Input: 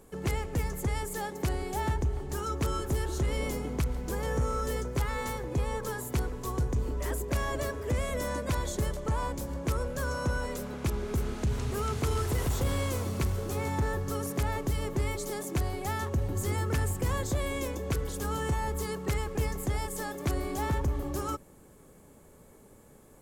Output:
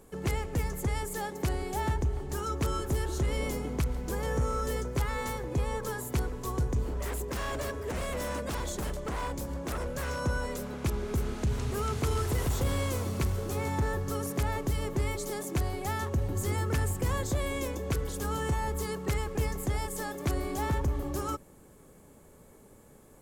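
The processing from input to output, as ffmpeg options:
ffmpeg -i in.wav -filter_complex "[0:a]asettb=1/sr,asplit=3[link_01][link_02][link_03];[link_01]atrim=end=6.854[link_04];[link_02]atrim=start=6.85:end=10.2,asetpts=PTS-STARTPTS,afade=type=in:duration=0.004:curve=qsin,afade=type=out:start_time=3.346:duration=0.004:curve=qsin,aeval=exprs='0.0398*(abs(mod(val(0)/0.0398+3,4)-2)-1)':channel_layout=same[link_05];[link_03]atrim=start=10.196[link_06];[link_04][link_05]acrossfade=duration=0.004:curve1=hsin:curve2=qsin[link_07];[link_07][link_06]acrossfade=duration=0.004:curve1=qsin:curve2=hsin" out.wav

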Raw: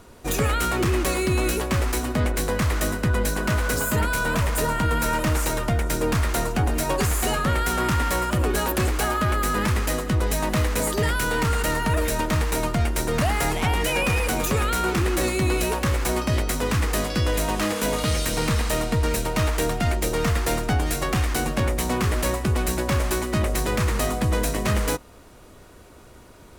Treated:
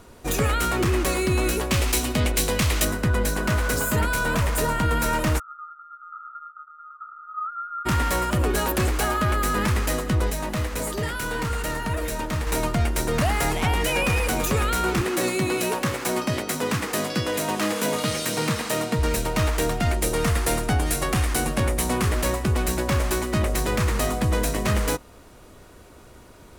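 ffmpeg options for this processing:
ffmpeg -i in.wav -filter_complex "[0:a]asettb=1/sr,asplit=3[link_01][link_02][link_03];[link_01]atrim=end=1.714[link_04];[link_02]atrim=start=1.71:end=2.85,asetpts=PTS-STARTPTS,afade=type=in:duration=0.004:curve=qsin,afade=type=out:start_time=1.136:duration=0.004:curve=qsin,highshelf=frequency=2100:width_type=q:width=1.5:gain=6[link_05];[link_03]atrim=start=2.846[link_06];[link_04][link_05]acrossfade=duration=0.004:curve1=hsin:curve2=qsin[link_07];[link_07][link_06]acrossfade=duration=0.004:curve1=qsin:curve2=hsin,asplit=3[link_08][link_09][link_10];[link_08]afade=type=out:start_time=5.38:duration=0.02[link_11];[link_09]asuperpass=centerf=1300:order=8:qfactor=7.3,afade=type=in:start_time=5.38:duration=0.02,afade=type=out:start_time=7.85:duration=0.02[link_12];[link_10]afade=type=in:start_time=7.85:duration=0.02[link_13];[link_11][link_12][link_13]amix=inputs=3:normalize=0,asettb=1/sr,asplit=3[link_14][link_15][link_16];[link_14]atrim=end=10.304[link_17];[link_15]atrim=start=10.3:end=12.47,asetpts=PTS-STARTPTS,afade=type=in:duration=0.004:curve=qsin,afade=type=out:start_time=2.166:duration=0.004:curve=qsin,flanger=delay=4.1:depth=6.7:regen=-74:speed=1.6:shape=triangular[link_18];[link_16]atrim=start=12.466[link_19];[link_17][link_18]acrossfade=duration=0.004:curve1=hsin:curve2=qsin[link_20];[link_20][link_19]acrossfade=duration=0.004:curve1=qsin:curve2=hsin,asettb=1/sr,asplit=3[link_21][link_22][link_23];[link_21]atrim=end=15.014[link_24];[link_22]atrim=start=15.01:end=18.99,asetpts=PTS-STARTPTS,afade=type=in:duration=0.004:curve=qsin,afade=type=out:start_time=3.976:duration=0.004:curve=qsin,highpass=frequency=120:width=0.5412,highpass=frequency=120:width=1.3066[link_25];[link_23]atrim=start=18.986[link_26];[link_24][link_25]acrossfade=duration=0.004:curve1=hsin:curve2=qsin[link_27];[link_27][link_26]acrossfade=duration=0.004:curve1=qsin:curve2=hsin,asettb=1/sr,asplit=3[link_28][link_29][link_30];[link_28]atrim=end=19.944[link_31];[link_29]atrim=start=19.94:end=22.09,asetpts=PTS-STARTPTS,afade=type=in:duration=0.004:curve=qsin,afade=type=out:start_time=2.146:duration=0.004:curve=qsin,equalizer=frequency=10000:width_type=o:width=0.54:gain=6[link_32];[link_30]atrim=start=22.086[link_33];[link_31][link_32]acrossfade=duration=0.004:curve1=hsin:curve2=qsin[link_34];[link_34][link_33]acrossfade=duration=0.004:curve1=qsin:curve2=hsin" out.wav

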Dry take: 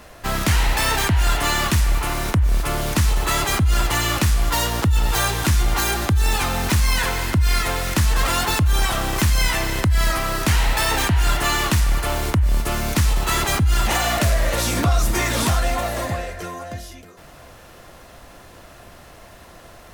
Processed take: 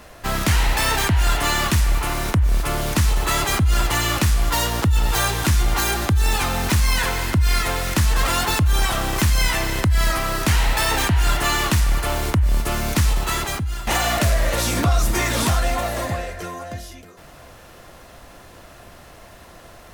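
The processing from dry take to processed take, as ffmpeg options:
ffmpeg -i in.wav -filter_complex "[0:a]asplit=2[link_01][link_02];[link_01]atrim=end=13.87,asetpts=PTS-STARTPTS,afade=type=out:start_time=13.09:duration=0.78:silence=0.199526[link_03];[link_02]atrim=start=13.87,asetpts=PTS-STARTPTS,afade=type=in:duration=0.004:curve=hsin:silence=0.199526[link_04];[link_03][link_04]concat=n=2:v=0:a=1" out.wav

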